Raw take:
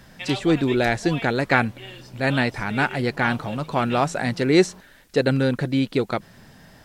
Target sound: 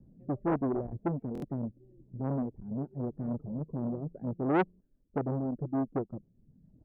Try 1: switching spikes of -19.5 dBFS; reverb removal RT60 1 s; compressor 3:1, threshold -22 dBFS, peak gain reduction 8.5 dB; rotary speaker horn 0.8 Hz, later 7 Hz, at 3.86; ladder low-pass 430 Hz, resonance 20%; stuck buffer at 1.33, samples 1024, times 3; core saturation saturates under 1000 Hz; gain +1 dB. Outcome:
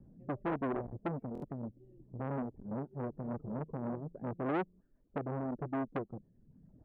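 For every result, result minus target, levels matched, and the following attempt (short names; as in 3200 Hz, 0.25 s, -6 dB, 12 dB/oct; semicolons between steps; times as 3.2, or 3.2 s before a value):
compressor: peak gain reduction +8.5 dB; switching spikes: distortion +12 dB
switching spikes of -19.5 dBFS; reverb removal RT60 1 s; rotary speaker horn 0.8 Hz, later 7 Hz, at 3.86; ladder low-pass 430 Hz, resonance 20%; stuck buffer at 1.33, samples 1024, times 3; core saturation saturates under 1000 Hz; gain +1 dB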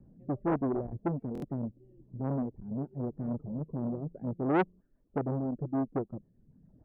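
switching spikes: distortion +12 dB
switching spikes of -31.5 dBFS; reverb removal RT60 1 s; rotary speaker horn 0.8 Hz, later 7 Hz, at 3.86; ladder low-pass 430 Hz, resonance 20%; stuck buffer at 1.33, samples 1024, times 3; core saturation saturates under 1000 Hz; gain +1 dB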